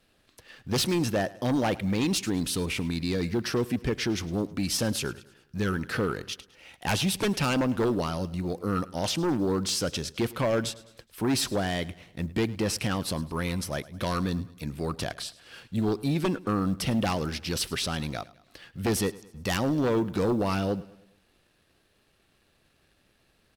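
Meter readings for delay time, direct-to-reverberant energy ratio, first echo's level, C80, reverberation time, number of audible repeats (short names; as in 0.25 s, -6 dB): 0.105 s, none, -20.0 dB, none, none, 3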